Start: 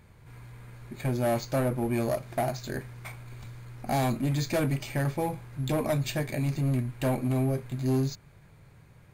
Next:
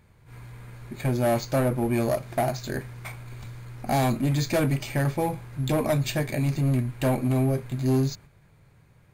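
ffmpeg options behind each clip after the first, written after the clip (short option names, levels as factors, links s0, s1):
-af "agate=range=0.501:threshold=0.00398:ratio=16:detection=peak,volume=1.5"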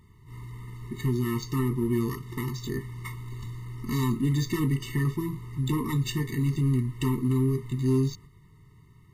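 -filter_complex "[0:a]asplit=2[s0][s1];[s1]acompressor=threshold=0.0251:ratio=20,volume=0.794[s2];[s0][s2]amix=inputs=2:normalize=0,afftfilt=real='re*eq(mod(floor(b*sr/1024/440),2),0)':imag='im*eq(mod(floor(b*sr/1024/440),2),0)':win_size=1024:overlap=0.75,volume=0.75"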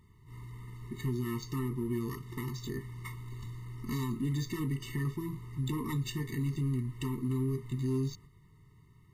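-af "alimiter=limit=0.0944:level=0:latency=1:release=150,volume=0.562"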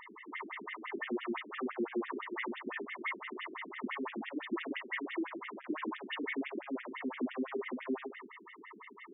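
-filter_complex "[0:a]asplit=2[s0][s1];[s1]highpass=f=720:p=1,volume=50.1,asoftclip=type=tanh:threshold=0.0531[s2];[s0][s2]amix=inputs=2:normalize=0,lowpass=f=4400:p=1,volume=0.501,afftfilt=real='re*between(b*sr/1024,270*pow(2600/270,0.5+0.5*sin(2*PI*5.9*pts/sr))/1.41,270*pow(2600/270,0.5+0.5*sin(2*PI*5.9*pts/sr))*1.41)':imag='im*between(b*sr/1024,270*pow(2600/270,0.5+0.5*sin(2*PI*5.9*pts/sr))/1.41,270*pow(2600/270,0.5+0.5*sin(2*PI*5.9*pts/sr))*1.41)':win_size=1024:overlap=0.75,volume=1.12"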